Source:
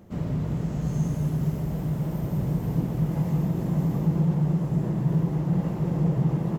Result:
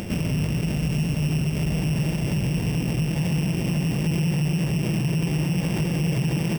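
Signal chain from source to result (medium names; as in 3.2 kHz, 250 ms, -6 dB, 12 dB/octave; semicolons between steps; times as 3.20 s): sorted samples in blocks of 16 samples; upward compressor, threshold -28 dBFS; peak limiter -24 dBFS, peak gain reduction 11 dB; trim +7 dB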